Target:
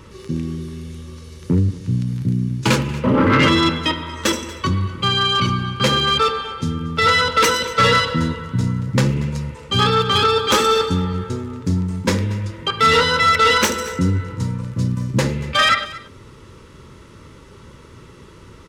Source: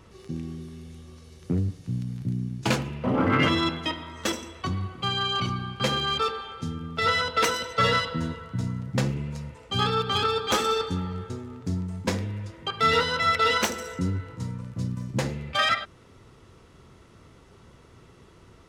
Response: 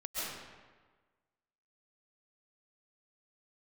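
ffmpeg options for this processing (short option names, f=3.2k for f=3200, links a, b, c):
-filter_complex "[0:a]asettb=1/sr,asplit=3[a][b][c];[a]atrim=end=1.574[d];[b]atrim=start=1.57:end=2.07,asetpts=PTS-STARTPTS,afade=t=in:d=0.004:c=qsin,afade=t=out:st=0.496:d=0.004:c=qsin,lowpass=11k[e];[c]atrim=start=2.066[f];[d][e]acrossfade=d=0.004:c1=hsin:c2=qsin[g];[g][f]acrossfade=d=0.004:c1=qsin:c2=hsin,aeval=exprs='0.376*sin(PI/2*2*val(0)/0.376)':c=same,asuperstop=centerf=720:order=4:qfactor=3.8,asplit=2[h][i];[i]aecho=0:1:234:0.119[j];[h][j]amix=inputs=2:normalize=0"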